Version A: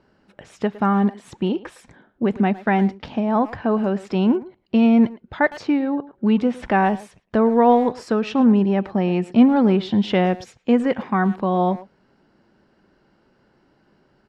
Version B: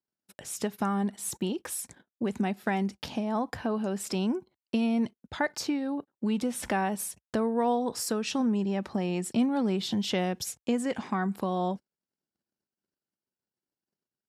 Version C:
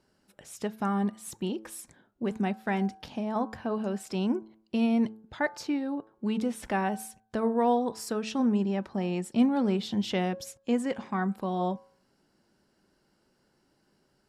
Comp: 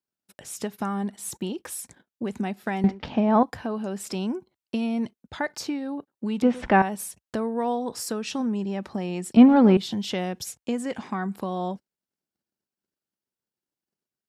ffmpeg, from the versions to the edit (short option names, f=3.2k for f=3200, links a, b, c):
-filter_complex "[0:a]asplit=3[a][b][c];[1:a]asplit=4[d][e][f][g];[d]atrim=end=2.842[h];[a]atrim=start=2.838:end=3.432[i];[e]atrim=start=3.428:end=6.422[j];[b]atrim=start=6.418:end=6.822[k];[f]atrim=start=6.818:end=9.372[l];[c]atrim=start=9.368:end=9.772[m];[g]atrim=start=9.768[n];[h][i]acrossfade=d=0.004:c1=hsin:c2=hsin[o];[o][j]acrossfade=d=0.004:c1=hsin:c2=hsin[p];[p][k]acrossfade=d=0.004:c1=hsin:c2=hsin[q];[q][l]acrossfade=d=0.004:c1=hsin:c2=hsin[r];[r][m]acrossfade=d=0.004:c1=hsin:c2=hsin[s];[s][n]acrossfade=d=0.004:c1=hsin:c2=hsin"